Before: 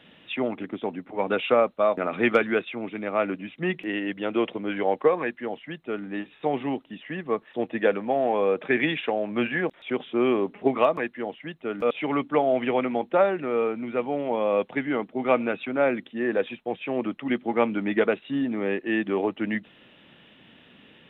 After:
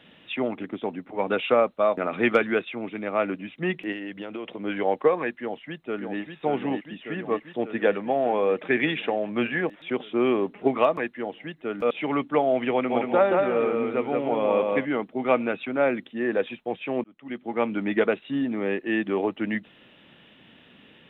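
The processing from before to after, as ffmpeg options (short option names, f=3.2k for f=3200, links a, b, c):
-filter_complex "[0:a]asettb=1/sr,asplit=3[a][b][c];[a]atrim=end=3.924[d];[b]atrim=start=3.92:end=4.64,asetpts=PTS-STARTPTS,afade=t=in:d=0.004:c=qsin,afade=t=out:st=0.716:d=0.004:c=qsin,acompressor=threshold=-30dB:ratio=10:attack=3.2:release=140:knee=1:detection=peak[e];[c]atrim=start=4.636[f];[d][e]acrossfade=d=0.004:c1=hsin:c2=qsin[g];[g][f]acrossfade=d=0.004:c1=qsin:c2=hsin,asplit=2[h][i];[i]afade=t=in:st=5.39:d=0.01,afade=t=out:st=6.21:d=0.01,aecho=0:1:590|1180|1770|2360|2950|3540|4130|4720|5310|5900|6490|7080:0.562341|0.421756|0.316317|0.237238|0.177928|0.133446|0.100085|0.0750635|0.0562976|0.0422232|0.0316674|0.0237506[j];[h][j]amix=inputs=2:normalize=0,asplit=3[k][l][m];[k]afade=t=out:st=12.89:d=0.02[n];[l]aecho=1:1:177|354|531|708:0.708|0.219|0.068|0.0211,afade=t=in:st=12.89:d=0.02,afade=t=out:st=14.84:d=0.02[o];[m]afade=t=in:st=14.84:d=0.02[p];[n][o][p]amix=inputs=3:normalize=0,asplit=2[q][r];[q]atrim=end=17.04,asetpts=PTS-STARTPTS,afade=t=out:st=17.036:d=0.004:c=hsin[s];[r]atrim=start=17.04,asetpts=PTS-STARTPTS,afade=t=in:d=0.77[t];[s][t]concat=n=2:v=0:a=1"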